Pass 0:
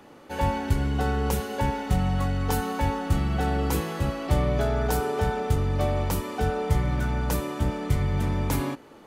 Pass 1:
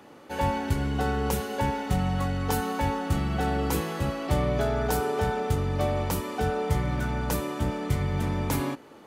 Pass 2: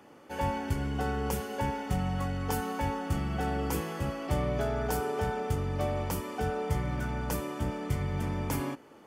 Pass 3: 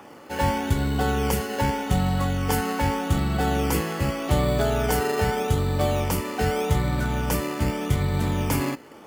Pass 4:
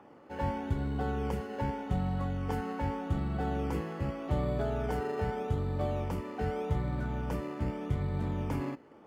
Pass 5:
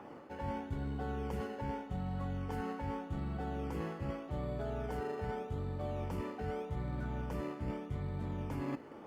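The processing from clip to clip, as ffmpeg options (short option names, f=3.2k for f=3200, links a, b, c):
-af "highpass=f=83:p=1"
-af "bandreject=f=3.9k:w=5.9,volume=-4.5dB"
-filter_complex "[0:a]acrossover=split=630|1200[a][b][c];[a]acrusher=samples=15:mix=1:aa=0.000001:lfo=1:lforange=9:lforate=0.83[d];[b]acompressor=mode=upward:threshold=-53dB:ratio=2.5[e];[d][e][c]amix=inputs=3:normalize=0,volume=8dB"
-af "lowpass=f=1.1k:p=1,volume=-8.5dB"
-af "areverse,acompressor=threshold=-40dB:ratio=12,areverse,volume=5dB" -ar 48000 -c:a libopus -b:a 48k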